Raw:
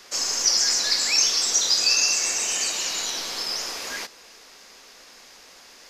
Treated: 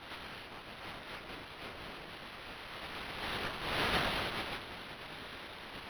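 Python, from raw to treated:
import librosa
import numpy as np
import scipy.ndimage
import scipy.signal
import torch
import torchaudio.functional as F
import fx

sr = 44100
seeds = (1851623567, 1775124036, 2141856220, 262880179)

y = scipy.signal.sosfilt(scipy.signal.cheby1(6, 6, 460.0, 'highpass', fs=sr, output='sos'), x)
y = fx.high_shelf(y, sr, hz=12000.0, db=6.5)
y = y + 10.0 ** (-6.5 / 20.0) * np.pad(y, (int(497 * sr / 1000.0), 0))[:len(y)]
y = fx.tube_stage(y, sr, drive_db=30.0, bias=0.3)
y = scipy.signal.sosfilt(scipy.signal.cheby2(4, 80, [650.0, 1300.0], 'bandstop', fs=sr, output='sos'), y)
y = fx.high_shelf(y, sr, hz=4700.0, db=7.5)
y = fx.over_compress(y, sr, threshold_db=-37.0, ratio=-0.5)
y = fx.spec_gate(y, sr, threshold_db=-15, keep='weak')
y = fx.chorus_voices(y, sr, voices=6, hz=0.72, base_ms=21, depth_ms=4.2, mix_pct=55)
y = np.interp(np.arange(len(y)), np.arange(len(y))[::6], y[::6])
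y = y * librosa.db_to_amplitude(11.5)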